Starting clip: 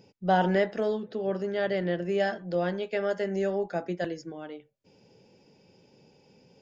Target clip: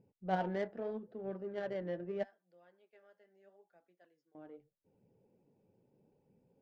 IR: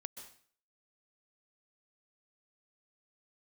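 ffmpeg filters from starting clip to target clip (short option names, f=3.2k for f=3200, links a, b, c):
-filter_complex "[0:a]asettb=1/sr,asplit=3[a][b][c];[a]atrim=end=2.234[d];[b]atrim=start=2.23:end=4.35,asetpts=PTS-STARTPTS,afade=t=in:d=0.004:c=qsin,afade=t=out:st=2.116:d=0.004:c=qsin,aderivative[e];[c]atrim=start=4.346[f];[d][e]acrossfade=d=0.004:c1=hsin:c2=qsin[g];[g][f]acrossfade=d=0.004:c1=qsin:c2=hsin,flanger=delay=0.4:depth=9.1:regen=62:speed=0.79:shape=sinusoidal,adynamicsmooth=sensitivity=2:basefreq=1.1k,volume=-7dB"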